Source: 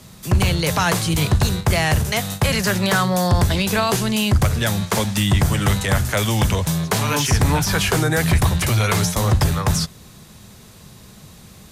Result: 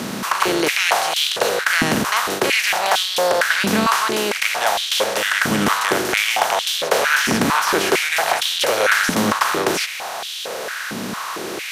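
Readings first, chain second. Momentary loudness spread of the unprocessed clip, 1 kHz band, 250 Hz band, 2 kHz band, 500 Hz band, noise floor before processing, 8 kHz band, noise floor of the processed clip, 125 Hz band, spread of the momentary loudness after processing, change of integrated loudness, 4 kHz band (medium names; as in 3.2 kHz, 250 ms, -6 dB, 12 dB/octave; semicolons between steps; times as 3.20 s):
3 LU, +5.0 dB, -2.5 dB, +6.0 dB, +3.5 dB, -44 dBFS, +1.0 dB, -28 dBFS, -16.0 dB, 10 LU, +0.5 dB, +4.5 dB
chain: spectral levelling over time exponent 0.4; step-sequenced high-pass 4.4 Hz 240–3300 Hz; trim -6.5 dB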